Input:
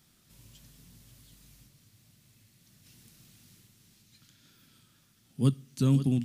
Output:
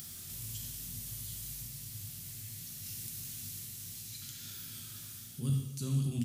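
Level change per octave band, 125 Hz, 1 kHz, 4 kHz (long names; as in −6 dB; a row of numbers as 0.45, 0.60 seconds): −5.0, −9.5, +4.5 decibels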